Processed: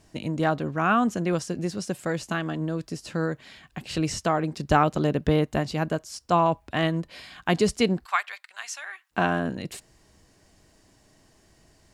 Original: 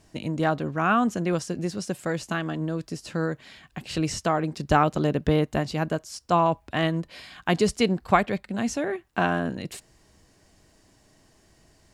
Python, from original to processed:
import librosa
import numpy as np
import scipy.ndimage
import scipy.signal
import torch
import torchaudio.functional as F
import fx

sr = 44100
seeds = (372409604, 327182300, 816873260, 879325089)

y = fx.highpass(x, sr, hz=1100.0, slope=24, at=(8.04, 9.1), fade=0.02)